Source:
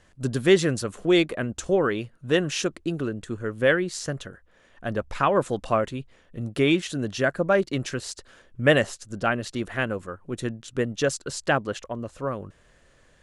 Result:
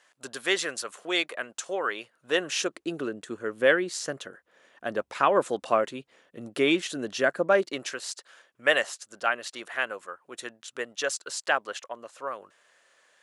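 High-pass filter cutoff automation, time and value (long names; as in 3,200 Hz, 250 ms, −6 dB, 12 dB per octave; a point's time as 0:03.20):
0:01.86 760 Hz
0:02.99 320 Hz
0:07.54 320 Hz
0:08.08 720 Hz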